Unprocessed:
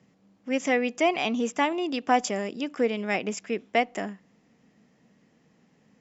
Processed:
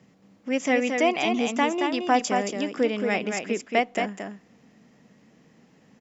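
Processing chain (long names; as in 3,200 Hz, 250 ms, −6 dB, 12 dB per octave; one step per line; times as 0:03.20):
in parallel at −3 dB: downward compressor, threshold −38 dBFS, peak gain reduction 20.5 dB
on the sum: single-tap delay 224 ms −5 dB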